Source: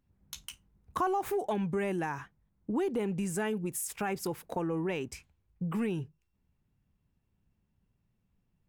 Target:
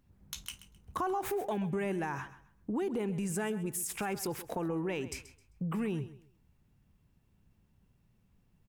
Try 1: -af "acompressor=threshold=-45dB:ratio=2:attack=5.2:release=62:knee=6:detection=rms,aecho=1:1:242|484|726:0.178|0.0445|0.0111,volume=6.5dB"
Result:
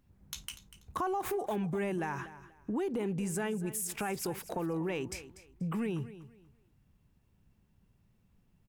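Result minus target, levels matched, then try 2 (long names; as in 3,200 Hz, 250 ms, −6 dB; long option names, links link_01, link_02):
echo 111 ms late
-af "acompressor=threshold=-45dB:ratio=2:attack=5.2:release=62:knee=6:detection=rms,aecho=1:1:131|262|393:0.178|0.0445|0.0111,volume=6.5dB"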